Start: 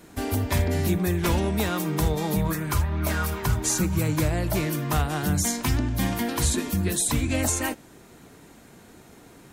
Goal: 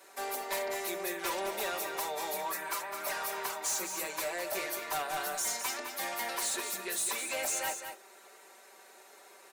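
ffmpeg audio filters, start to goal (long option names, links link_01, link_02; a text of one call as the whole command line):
ffmpeg -i in.wav -af "highpass=frequency=480:width=0.5412,highpass=frequency=480:width=1.3066,bandreject=frequency=3200:width=15,aecho=1:1:5.2:0.78,asoftclip=type=tanh:threshold=-25dB,aecho=1:1:210:0.398,volume=-4dB" out.wav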